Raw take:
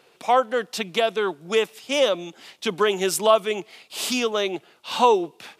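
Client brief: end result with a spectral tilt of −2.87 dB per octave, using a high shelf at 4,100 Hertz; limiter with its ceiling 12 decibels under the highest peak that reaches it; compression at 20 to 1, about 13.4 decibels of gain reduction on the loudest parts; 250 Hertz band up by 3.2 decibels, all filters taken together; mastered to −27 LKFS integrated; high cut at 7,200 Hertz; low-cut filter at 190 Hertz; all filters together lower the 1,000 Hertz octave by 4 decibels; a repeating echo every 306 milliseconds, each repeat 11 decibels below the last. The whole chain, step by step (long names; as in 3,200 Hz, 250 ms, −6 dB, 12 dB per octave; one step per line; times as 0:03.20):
high-pass filter 190 Hz
low-pass filter 7,200 Hz
parametric band 250 Hz +6 dB
parametric band 1,000 Hz −6 dB
high-shelf EQ 4,100 Hz +5 dB
downward compressor 20 to 1, threshold −27 dBFS
brickwall limiter −26 dBFS
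repeating echo 306 ms, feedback 28%, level −11 dB
level +8.5 dB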